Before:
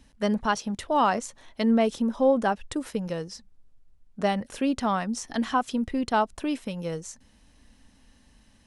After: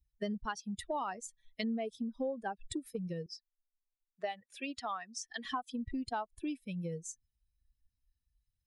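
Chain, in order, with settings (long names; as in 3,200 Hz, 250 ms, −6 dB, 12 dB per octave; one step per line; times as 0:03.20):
spectral dynamics exaggerated over time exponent 2
0:03.26–0:05.45: three-way crossover with the lows and the highs turned down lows −23 dB, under 490 Hz, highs −12 dB, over 5,900 Hz
downward compressor 5 to 1, threshold −38 dBFS, peak gain reduction 18 dB
level +2.5 dB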